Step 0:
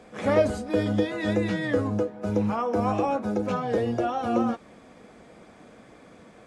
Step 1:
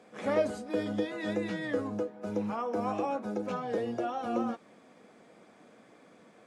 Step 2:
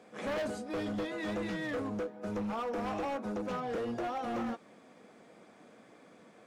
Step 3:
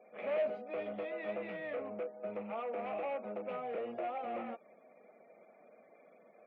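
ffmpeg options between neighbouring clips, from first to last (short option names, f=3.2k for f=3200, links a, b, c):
-af "highpass=170,volume=-6.5dB"
-af "asoftclip=type=hard:threshold=-32dB"
-af "afftfilt=real='re*gte(hypot(re,im),0.00126)':imag='im*gte(hypot(re,im),0.00126)':win_size=1024:overlap=0.75,highpass=280,equalizer=f=300:t=q:w=4:g=-9,equalizer=f=620:t=q:w=4:g=8,equalizer=f=1k:t=q:w=4:g=-6,equalizer=f=1.6k:t=q:w=4:g=-8,equalizer=f=2.4k:t=q:w=4:g=7,lowpass=f=2.6k:w=0.5412,lowpass=f=2.6k:w=1.3066,volume=-3.5dB"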